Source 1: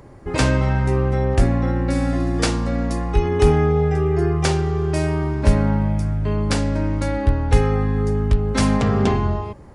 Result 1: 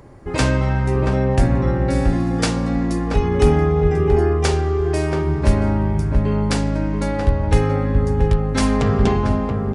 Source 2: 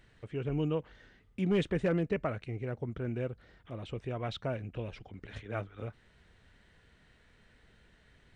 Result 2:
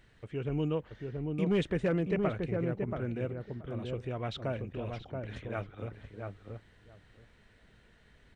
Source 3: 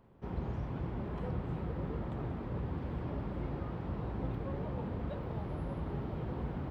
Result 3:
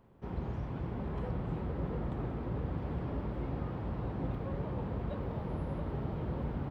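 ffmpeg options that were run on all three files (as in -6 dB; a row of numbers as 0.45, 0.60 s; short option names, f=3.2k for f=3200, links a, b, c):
-filter_complex "[0:a]asplit=2[a][b];[b]adelay=679,lowpass=f=1.1k:p=1,volume=-3.5dB,asplit=2[c][d];[d]adelay=679,lowpass=f=1.1k:p=1,volume=0.16,asplit=2[e][f];[f]adelay=679,lowpass=f=1.1k:p=1,volume=0.16[g];[a][c][e][g]amix=inputs=4:normalize=0"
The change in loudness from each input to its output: +1.0, +0.5, +1.0 LU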